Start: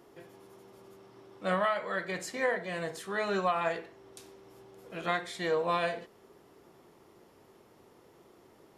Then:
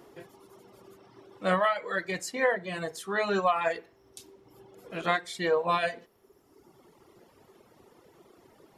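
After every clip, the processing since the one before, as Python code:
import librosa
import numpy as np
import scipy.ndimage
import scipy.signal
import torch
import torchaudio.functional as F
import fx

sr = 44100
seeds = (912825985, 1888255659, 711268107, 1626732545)

y = fx.dereverb_blind(x, sr, rt60_s=1.5)
y = y * 10.0 ** (4.5 / 20.0)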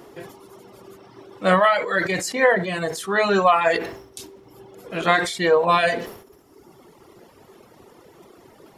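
y = fx.sustainer(x, sr, db_per_s=83.0)
y = y * 10.0 ** (8.5 / 20.0)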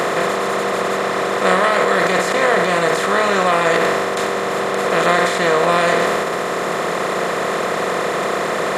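y = fx.bin_compress(x, sr, power=0.2)
y = y * 10.0 ** (-5.0 / 20.0)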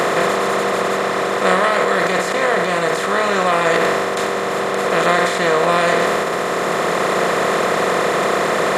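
y = fx.rider(x, sr, range_db=10, speed_s=2.0)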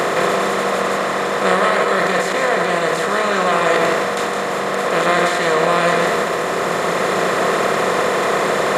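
y = x + 10.0 ** (-6.0 / 20.0) * np.pad(x, (int(163 * sr / 1000.0), 0))[:len(x)]
y = y * 10.0 ** (-1.0 / 20.0)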